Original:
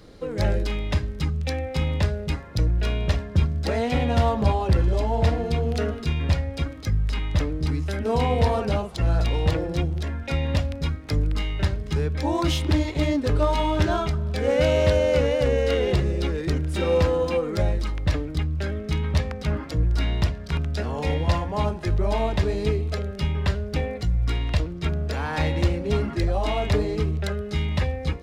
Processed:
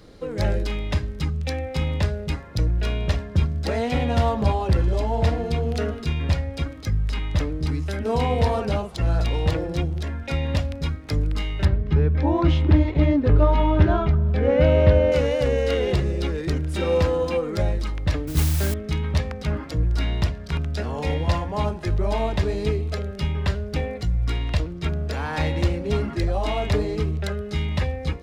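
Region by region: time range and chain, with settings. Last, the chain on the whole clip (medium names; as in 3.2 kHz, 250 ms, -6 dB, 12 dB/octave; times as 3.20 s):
11.65–15.12 s: low-pass 2.5 kHz + bass shelf 340 Hz +6.5 dB
18.27–18.74 s: bass shelf 500 Hz +5 dB + modulation noise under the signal 12 dB
whole clip: none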